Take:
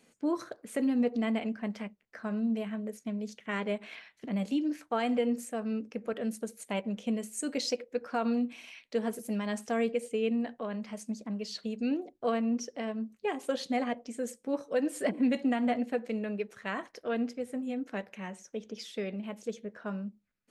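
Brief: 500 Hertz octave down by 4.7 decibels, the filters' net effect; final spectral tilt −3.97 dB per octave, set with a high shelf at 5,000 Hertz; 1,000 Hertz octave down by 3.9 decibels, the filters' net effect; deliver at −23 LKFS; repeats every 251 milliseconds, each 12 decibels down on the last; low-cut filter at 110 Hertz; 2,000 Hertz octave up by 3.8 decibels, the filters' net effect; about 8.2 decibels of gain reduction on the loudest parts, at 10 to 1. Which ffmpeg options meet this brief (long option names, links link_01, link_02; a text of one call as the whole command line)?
ffmpeg -i in.wav -af "highpass=110,equalizer=frequency=500:width_type=o:gain=-4.5,equalizer=frequency=1000:width_type=o:gain=-5,equalizer=frequency=2000:width_type=o:gain=5.5,highshelf=frequency=5000:gain=3,acompressor=threshold=-33dB:ratio=10,aecho=1:1:251|502|753:0.251|0.0628|0.0157,volume=16dB" out.wav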